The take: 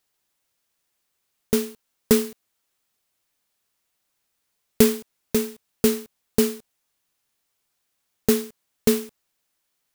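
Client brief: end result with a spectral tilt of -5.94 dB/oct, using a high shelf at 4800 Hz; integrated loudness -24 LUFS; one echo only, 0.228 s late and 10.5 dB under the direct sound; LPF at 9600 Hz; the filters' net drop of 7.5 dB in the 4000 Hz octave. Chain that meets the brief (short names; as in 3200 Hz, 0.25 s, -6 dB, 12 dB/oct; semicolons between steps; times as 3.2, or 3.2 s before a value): LPF 9600 Hz; bell 4000 Hz -5 dB; high shelf 4800 Hz -9 dB; echo 0.228 s -10.5 dB; gain +1.5 dB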